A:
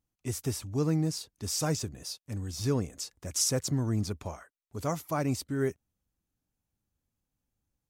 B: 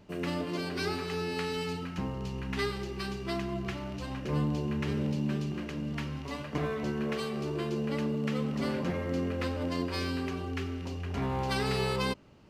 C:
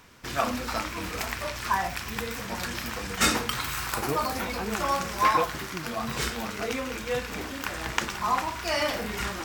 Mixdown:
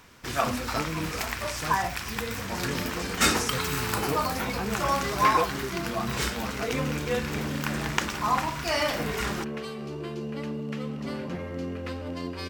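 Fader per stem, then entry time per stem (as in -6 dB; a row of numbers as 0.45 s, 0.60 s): -7.0 dB, -2.0 dB, +0.5 dB; 0.00 s, 2.45 s, 0.00 s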